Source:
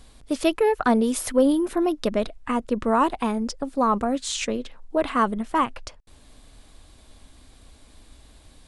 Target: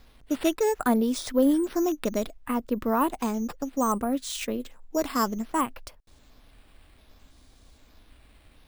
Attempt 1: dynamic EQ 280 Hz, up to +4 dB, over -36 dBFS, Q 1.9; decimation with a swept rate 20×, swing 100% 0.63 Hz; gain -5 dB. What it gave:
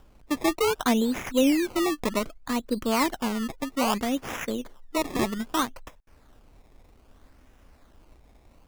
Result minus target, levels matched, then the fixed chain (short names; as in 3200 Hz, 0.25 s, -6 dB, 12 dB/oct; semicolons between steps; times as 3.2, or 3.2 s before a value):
decimation with a swept rate: distortion +12 dB
dynamic EQ 280 Hz, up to +4 dB, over -36 dBFS, Q 1.9; decimation with a swept rate 5×, swing 100% 0.63 Hz; gain -5 dB